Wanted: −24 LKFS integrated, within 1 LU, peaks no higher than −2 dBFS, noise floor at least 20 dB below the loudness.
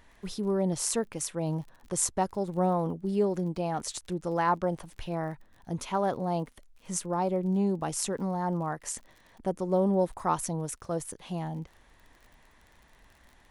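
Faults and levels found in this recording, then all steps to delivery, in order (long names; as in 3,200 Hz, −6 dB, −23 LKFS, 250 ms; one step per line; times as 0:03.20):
crackle rate 40 per second; integrated loudness −30.5 LKFS; sample peak −11.5 dBFS; target loudness −24.0 LKFS
→ click removal
level +6.5 dB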